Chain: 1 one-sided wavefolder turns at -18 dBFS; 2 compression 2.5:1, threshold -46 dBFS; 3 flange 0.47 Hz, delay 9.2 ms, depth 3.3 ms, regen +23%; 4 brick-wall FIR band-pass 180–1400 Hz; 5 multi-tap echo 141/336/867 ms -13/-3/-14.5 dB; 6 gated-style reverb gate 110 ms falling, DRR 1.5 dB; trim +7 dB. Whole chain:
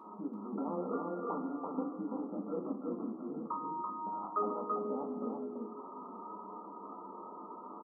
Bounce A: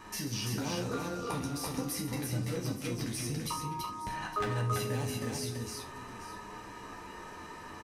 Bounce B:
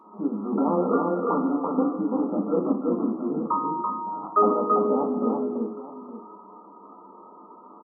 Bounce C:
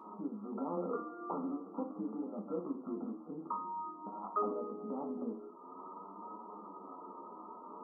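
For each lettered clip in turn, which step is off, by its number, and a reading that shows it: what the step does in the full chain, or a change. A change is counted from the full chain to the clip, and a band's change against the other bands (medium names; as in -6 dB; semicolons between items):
4, 125 Hz band +18.0 dB; 2, mean gain reduction 8.5 dB; 5, loudness change -2.0 LU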